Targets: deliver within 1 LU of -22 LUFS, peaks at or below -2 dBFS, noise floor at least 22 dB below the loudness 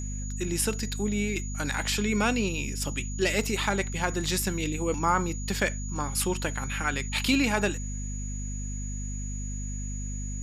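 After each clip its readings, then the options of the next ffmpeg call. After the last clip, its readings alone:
hum 50 Hz; harmonics up to 250 Hz; hum level -31 dBFS; steady tone 6800 Hz; tone level -40 dBFS; loudness -29.0 LUFS; peak -11.0 dBFS; loudness target -22.0 LUFS
-> -af "bandreject=f=50:t=h:w=4,bandreject=f=100:t=h:w=4,bandreject=f=150:t=h:w=4,bandreject=f=200:t=h:w=4,bandreject=f=250:t=h:w=4"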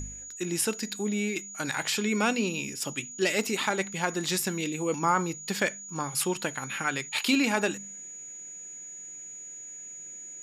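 hum none; steady tone 6800 Hz; tone level -40 dBFS
-> -af "bandreject=f=6.8k:w=30"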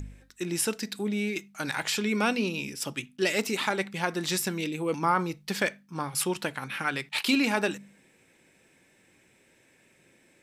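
steady tone none; loudness -29.0 LUFS; peak -11.5 dBFS; loudness target -22.0 LUFS
-> -af "volume=7dB"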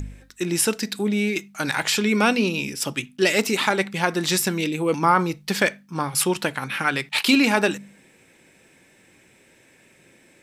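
loudness -22.0 LUFS; peak -4.5 dBFS; noise floor -56 dBFS

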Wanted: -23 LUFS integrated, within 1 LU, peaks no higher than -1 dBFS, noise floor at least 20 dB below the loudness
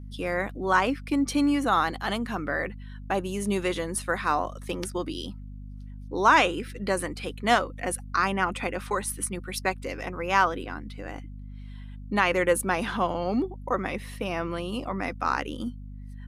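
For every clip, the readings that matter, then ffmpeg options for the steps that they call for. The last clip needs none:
hum 50 Hz; harmonics up to 250 Hz; hum level -37 dBFS; loudness -27.0 LUFS; peak -6.5 dBFS; loudness target -23.0 LUFS
-> -af "bandreject=f=50:t=h:w=4,bandreject=f=100:t=h:w=4,bandreject=f=150:t=h:w=4,bandreject=f=200:t=h:w=4,bandreject=f=250:t=h:w=4"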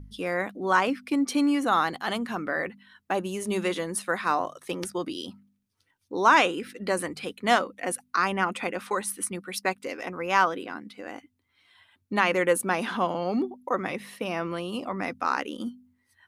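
hum none; loudness -27.5 LUFS; peak -7.0 dBFS; loudness target -23.0 LUFS
-> -af "volume=4.5dB"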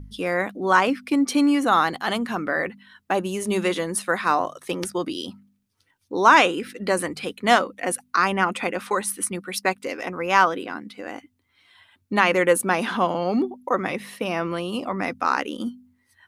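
loudness -23.0 LUFS; peak -2.5 dBFS; noise floor -69 dBFS

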